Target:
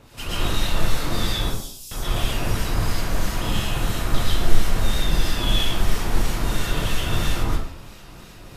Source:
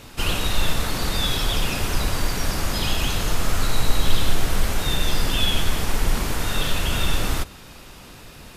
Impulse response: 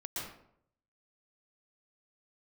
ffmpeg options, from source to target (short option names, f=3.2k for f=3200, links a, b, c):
-filter_complex "[0:a]asettb=1/sr,asplit=3[a][b][c];[a]atrim=end=1.374[d];[b]atrim=start=1.37:end=4.14,asetpts=PTS-STARTPTS,afade=t=in:d=0.004:c=qsin,afade=t=out:st=2.766:d=0.004:c=qsin,acrossover=split=4900[e][f];[e]adelay=540[g];[g][f]amix=inputs=2:normalize=0,atrim=end_sample=122157[h];[c]atrim=start=4.136[i];[d][h]acrossfade=d=0.004:c1=hsin:c2=qsin[j];[j][i]acrossfade=d=0.004:c1=qsin:c2=hsin,acrossover=split=1500[k][l];[k]aeval=exprs='val(0)*(1-0.7/2+0.7/2*cos(2*PI*3*n/s))':c=same[m];[l]aeval=exprs='val(0)*(1-0.7/2-0.7/2*cos(2*PI*3*n/s))':c=same[n];[m][n]amix=inputs=2:normalize=0[o];[1:a]atrim=start_sample=2205[p];[o][p]afir=irnorm=-1:irlink=0,volume=1dB"